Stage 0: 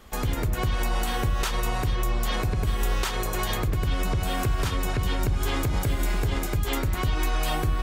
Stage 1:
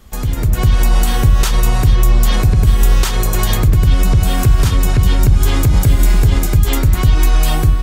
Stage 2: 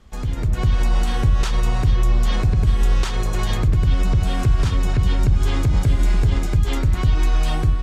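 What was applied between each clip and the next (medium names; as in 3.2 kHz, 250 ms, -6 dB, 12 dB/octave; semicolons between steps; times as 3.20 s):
tone controls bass +9 dB, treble +6 dB; level rider
distance through air 69 m; trim -6 dB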